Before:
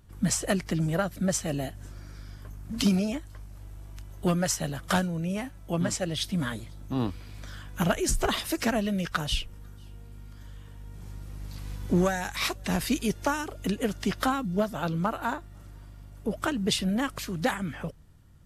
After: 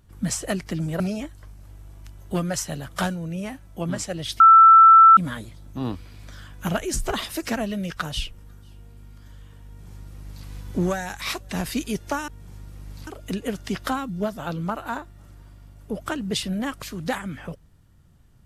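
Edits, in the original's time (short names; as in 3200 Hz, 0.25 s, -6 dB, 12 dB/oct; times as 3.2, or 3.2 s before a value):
1–2.92 cut
6.32 add tone 1330 Hz -7 dBFS 0.77 s
10.82–11.61 copy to 13.43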